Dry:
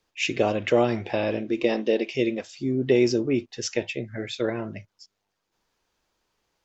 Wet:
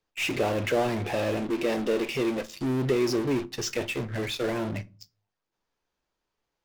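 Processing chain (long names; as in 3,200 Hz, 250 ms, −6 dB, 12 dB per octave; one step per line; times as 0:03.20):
high-shelf EQ 3,800 Hz −5 dB
in parallel at −11 dB: fuzz pedal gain 42 dB, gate −47 dBFS
on the sum: rectangular room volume 120 cubic metres, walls furnished, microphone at 0.31 metres
level −7.5 dB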